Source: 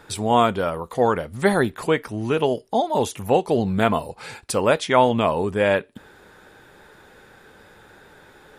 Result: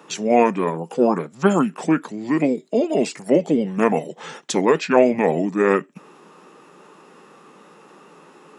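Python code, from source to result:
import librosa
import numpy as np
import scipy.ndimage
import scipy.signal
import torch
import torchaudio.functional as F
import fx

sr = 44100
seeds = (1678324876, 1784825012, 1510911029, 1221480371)

y = fx.formant_shift(x, sr, semitones=-5)
y = scipy.signal.sosfilt(scipy.signal.ellip(4, 1.0, 50, 160.0, 'highpass', fs=sr, output='sos'), y)
y = y * 10.0 ** (2.5 / 20.0)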